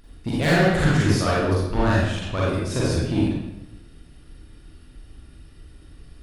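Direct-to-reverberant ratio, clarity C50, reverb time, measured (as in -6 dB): -7.0 dB, -3.0 dB, 0.95 s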